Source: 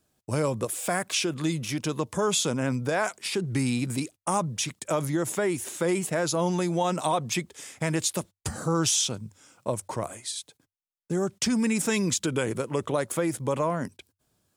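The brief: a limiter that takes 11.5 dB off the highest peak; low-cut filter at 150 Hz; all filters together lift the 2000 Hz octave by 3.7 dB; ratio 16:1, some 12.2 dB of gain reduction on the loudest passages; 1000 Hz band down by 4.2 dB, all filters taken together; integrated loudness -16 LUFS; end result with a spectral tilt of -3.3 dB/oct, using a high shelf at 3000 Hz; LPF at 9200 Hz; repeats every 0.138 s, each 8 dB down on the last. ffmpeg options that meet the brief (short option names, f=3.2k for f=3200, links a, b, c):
-af "highpass=150,lowpass=9.2k,equalizer=f=1k:t=o:g=-7.5,equalizer=f=2k:t=o:g=3.5,highshelf=f=3k:g=9,acompressor=threshold=-27dB:ratio=16,alimiter=limit=-24dB:level=0:latency=1,aecho=1:1:138|276|414|552|690:0.398|0.159|0.0637|0.0255|0.0102,volume=18dB"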